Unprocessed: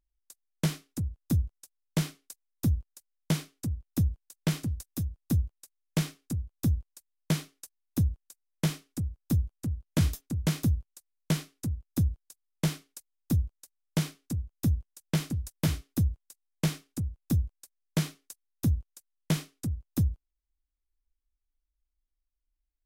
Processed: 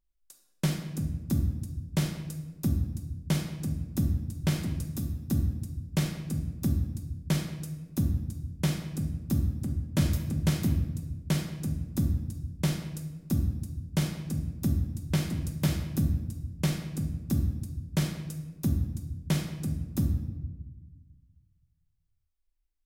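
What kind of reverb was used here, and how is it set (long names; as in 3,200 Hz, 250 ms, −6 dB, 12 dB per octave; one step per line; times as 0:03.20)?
rectangular room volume 740 cubic metres, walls mixed, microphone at 1.1 metres
level −1.5 dB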